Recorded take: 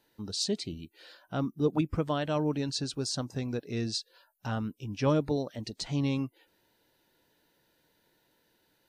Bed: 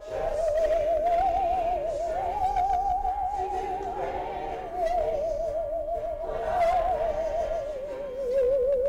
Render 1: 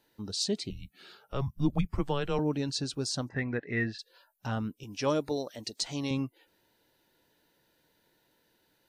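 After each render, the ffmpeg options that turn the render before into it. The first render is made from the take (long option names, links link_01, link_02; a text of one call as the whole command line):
ffmpeg -i in.wav -filter_complex "[0:a]asettb=1/sr,asplit=3[link_01][link_02][link_03];[link_01]atrim=end=0.704[link_04];[link_02]atrim=start=0.7:end=2.39,asetpts=PTS-STARTPTS,afade=type=in:duration=0.004:curve=qsin,afade=type=out:start_time=1.686:duration=0.004:curve=qsin,afreqshift=-140[link_05];[link_03]atrim=start=2.386[link_06];[link_04][link_05]acrossfade=duration=0.004:curve1=hsin:curve2=qsin[link_07];[link_07][link_06]acrossfade=duration=0.004:curve1=qsin:curve2=hsin,asplit=3[link_08][link_09][link_10];[link_08]afade=type=out:start_time=3.28:duration=0.02[link_11];[link_09]lowpass=frequency=1900:width_type=q:width=9.8,afade=type=in:start_time=3.28:duration=0.02,afade=type=out:start_time=3.98:duration=0.02[link_12];[link_10]afade=type=in:start_time=3.98:duration=0.02[link_13];[link_11][link_12][link_13]amix=inputs=3:normalize=0,asettb=1/sr,asplit=3[link_14][link_15][link_16];[link_14]atrim=end=4.834[link_17];[link_15]atrim=start=4.83:end=6.11,asetpts=PTS-STARTPTS,afade=type=in:duration=0.004:curve=qsin,afade=type=out:start_time=1.276:duration=0.004:curve=qsin,bass=frequency=250:gain=-10,treble=frequency=4000:gain=7[link_18];[link_16]atrim=start=6.106[link_19];[link_17][link_18]acrossfade=duration=0.004:curve1=hsin:curve2=qsin[link_20];[link_20][link_19]acrossfade=duration=0.004:curve1=qsin:curve2=hsin" out.wav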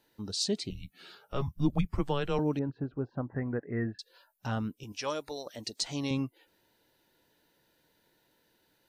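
ffmpeg -i in.wav -filter_complex "[0:a]asettb=1/sr,asplit=3[link_01][link_02][link_03];[link_01]atrim=end=0.704[link_04];[link_02]atrim=start=0.7:end=1.57,asetpts=PTS-STARTPTS,afade=type=in:duration=0.004:curve=qsin,afade=type=out:start_time=0.866:duration=0.004:curve=qsin,asplit=2[link_05][link_06];[link_06]adelay=12,volume=-7dB[link_07];[link_05][link_07]amix=inputs=2:normalize=0,atrim=end_sample=38367[link_08];[link_03]atrim=start=1.566[link_09];[link_04][link_08]acrossfade=duration=0.004:curve1=hsin:curve2=qsin[link_10];[link_10][link_09]acrossfade=duration=0.004:curve1=qsin:curve2=hsin,asettb=1/sr,asplit=3[link_11][link_12][link_13];[link_11]atrim=end=2.594[link_14];[link_12]atrim=start=2.59:end=3.99,asetpts=PTS-STARTPTS,afade=type=in:duration=0.004:curve=qsin,afade=type=out:start_time=1.396:duration=0.004:curve=qsin,lowpass=frequency=1400:width=0.5412,lowpass=frequency=1400:width=1.3066[link_15];[link_13]atrim=start=3.986[link_16];[link_14][link_15]acrossfade=duration=0.004:curve1=hsin:curve2=qsin[link_17];[link_17][link_16]acrossfade=duration=0.004:curve1=qsin:curve2=hsin,asettb=1/sr,asplit=3[link_18][link_19][link_20];[link_18]atrim=end=4.924[link_21];[link_19]atrim=start=4.92:end=5.46,asetpts=PTS-STARTPTS,afade=type=in:duration=0.004:curve=qsin,afade=type=out:start_time=0.536:duration=0.004:curve=qsin,equalizer=frequency=180:width=0.46:gain=-14.5[link_22];[link_20]atrim=start=5.456[link_23];[link_21][link_22]acrossfade=duration=0.004:curve1=hsin:curve2=qsin[link_24];[link_24][link_23]acrossfade=duration=0.004:curve1=qsin:curve2=hsin" out.wav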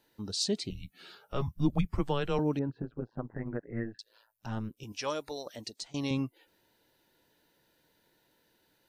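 ffmpeg -i in.wav -filter_complex "[0:a]asettb=1/sr,asplit=3[link_01][link_02][link_03];[link_01]atrim=end=2.824[link_04];[link_02]atrim=start=2.82:end=4.77,asetpts=PTS-STARTPTS,afade=type=in:duration=0.004:curve=qsin,afade=type=out:start_time=1.946:duration=0.004:curve=qsin,tremolo=f=110:d=0.889[link_05];[link_03]atrim=start=4.766[link_06];[link_04][link_05]acrossfade=duration=0.004:curve1=hsin:curve2=qsin[link_07];[link_07][link_06]acrossfade=duration=0.004:curve1=qsin:curve2=hsin,asplit=2[link_08][link_09];[link_08]atrim=end=5.94,asetpts=PTS-STARTPTS,afade=type=out:start_time=5.53:duration=0.41:silence=0.0944061[link_10];[link_09]atrim=start=5.94,asetpts=PTS-STARTPTS,afade=type=in:duration=0.004:curve=hsin:silence=0.0944061[link_11];[link_10][link_11]concat=n=2:v=0:a=1" out.wav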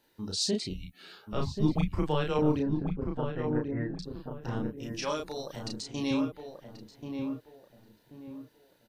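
ffmpeg -i in.wav -filter_complex "[0:a]asplit=2[link_01][link_02];[link_02]adelay=33,volume=-3dB[link_03];[link_01][link_03]amix=inputs=2:normalize=0,asplit=2[link_04][link_05];[link_05]adelay=1084,lowpass=frequency=1200:poles=1,volume=-5dB,asplit=2[link_06][link_07];[link_07]adelay=1084,lowpass=frequency=1200:poles=1,volume=0.34,asplit=2[link_08][link_09];[link_09]adelay=1084,lowpass=frequency=1200:poles=1,volume=0.34,asplit=2[link_10][link_11];[link_11]adelay=1084,lowpass=frequency=1200:poles=1,volume=0.34[link_12];[link_04][link_06][link_08][link_10][link_12]amix=inputs=5:normalize=0" out.wav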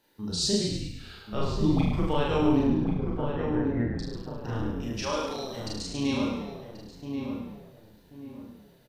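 ffmpeg -i in.wav -filter_complex "[0:a]asplit=2[link_01][link_02];[link_02]adelay=43,volume=-2dB[link_03];[link_01][link_03]amix=inputs=2:normalize=0,asplit=7[link_04][link_05][link_06][link_07][link_08][link_09][link_10];[link_05]adelay=104,afreqshift=-34,volume=-5dB[link_11];[link_06]adelay=208,afreqshift=-68,volume=-11.4dB[link_12];[link_07]adelay=312,afreqshift=-102,volume=-17.8dB[link_13];[link_08]adelay=416,afreqshift=-136,volume=-24.1dB[link_14];[link_09]adelay=520,afreqshift=-170,volume=-30.5dB[link_15];[link_10]adelay=624,afreqshift=-204,volume=-36.9dB[link_16];[link_04][link_11][link_12][link_13][link_14][link_15][link_16]amix=inputs=7:normalize=0" out.wav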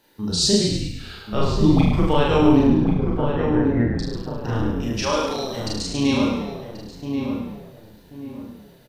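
ffmpeg -i in.wav -af "volume=8dB" out.wav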